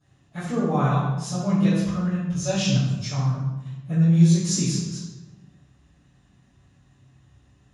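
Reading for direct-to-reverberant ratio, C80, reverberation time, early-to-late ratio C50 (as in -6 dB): -18.5 dB, 2.5 dB, 1.1 s, -0.5 dB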